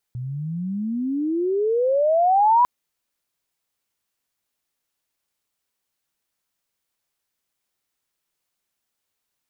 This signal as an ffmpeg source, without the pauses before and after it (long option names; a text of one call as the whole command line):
ffmpeg -f lavfi -i "aevalsrc='pow(10,(-27+15*t/2.5)/20)*sin(2*PI*120*2.5/log(1000/120)*(exp(log(1000/120)*t/2.5)-1))':duration=2.5:sample_rate=44100" out.wav